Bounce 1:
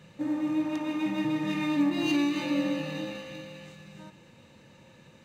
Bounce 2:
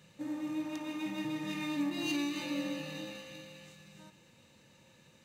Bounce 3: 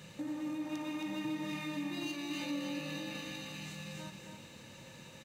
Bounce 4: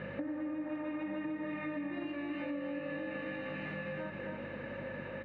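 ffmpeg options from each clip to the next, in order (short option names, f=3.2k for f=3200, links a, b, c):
-af "highshelf=f=3.6k:g=10.5,volume=-8.5dB"
-af "alimiter=level_in=5.5dB:limit=-24dB:level=0:latency=1,volume=-5.5dB,acompressor=threshold=-49dB:ratio=3,aecho=1:1:271:0.531,volume=8.5dB"
-af "aeval=exprs='val(0)+0.00316*(sin(2*PI*50*n/s)+sin(2*PI*2*50*n/s)/2+sin(2*PI*3*50*n/s)/3+sin(2*PI*4*50*n/s)/4+sin(2*PI*5*50*n/s)/5)':c=same,highpass=160,equalizer=f=170:t=q:w=4:g=-6,equalizer=f=560:t=q:w=4:g=7,equalizer=f=910:t=q:w=4:g=-4,equalizer=f=1.7k:t=q:w=4:g=5,lowpass=f=2.1k:w=0.5412,lowpass=f=2.1k:w=1.3066,acompressor=threshold=-48dB:ratio=6,volume=11.5dB"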